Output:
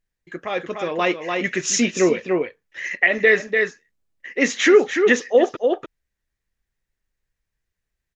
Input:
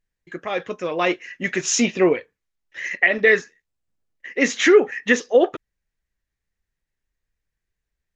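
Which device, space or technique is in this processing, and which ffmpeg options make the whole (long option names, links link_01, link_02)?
ducked delay: -filter_complex "[0:a]asplit=3[link_01][link_02][link_03];[link_02]adelay=293,volume=-4dB[link_04];[link_03]apad=whole_len=372486[link_05];[link_04][link_05]sidechaincompress=threshold=-23dB:ratio=8:attack=16:release=254[link_06];[link_01][link_06]amix=inputs=2:normalize=0,asettb=1/sr,asplit=3[link_07][link_08][link_09];[link_07]atrim=end=1.484[link_10];[link_08]atrim=start=1.48:end=2.18,asetpts=PTS-STARTPTS,afade=type=in:duration=0.004:curve=qsin,afade=type=out:start_time=0.696:duration=0.004:curve=qsin,equalizer=frequency=810:width_type=o:width=0.59:gain=-6[link_11];[link_09]atrim=start=2.176[link_12];[link_10][link_11]acrossfade=duration=0.004:curve1=hsin:curve2=qsin[link_13];[link_13][link_12]acrossfade=duration=0.004:curve1=qsin:curve2=hsin"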